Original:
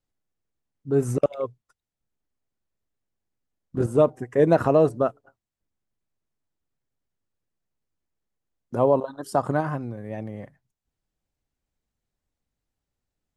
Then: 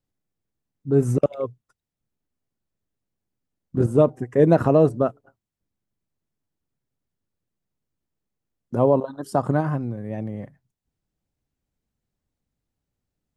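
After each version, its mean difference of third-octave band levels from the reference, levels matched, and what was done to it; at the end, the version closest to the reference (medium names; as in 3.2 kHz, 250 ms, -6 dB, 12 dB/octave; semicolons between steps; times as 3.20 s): 2.0 dB: peaking EQ 160 Hz +7 dB 2.8 oct; trim -1.5 dB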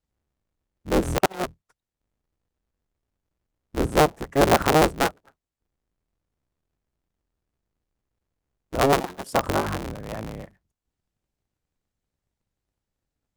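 11.5 dB: cycle switcher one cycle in 3, inverted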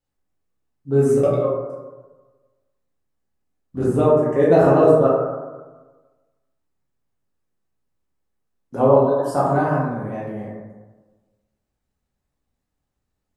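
6.0 dB: plate-style reverb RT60 1.3 s, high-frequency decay 0.35×, DRR -7.5 dB; trim -3 dB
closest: first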